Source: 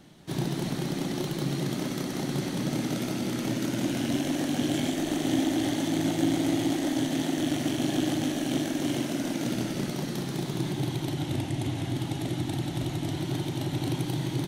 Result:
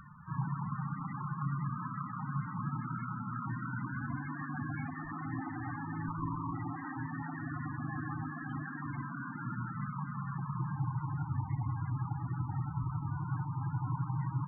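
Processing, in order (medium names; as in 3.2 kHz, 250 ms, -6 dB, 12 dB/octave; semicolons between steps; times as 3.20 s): 6.08–6.53 s: comb filter that takes the minimum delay 0.36 ms; FFT filter 140 Hz 0 dB, 470 Hz -22 dB, 1.1 kHz +13 dB, 1.6 kHz +7 dB, 4.3 kHz -11 dB; upward compressor, threshold -40 dBFS; loudest bins only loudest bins 16; trim -2.5 dB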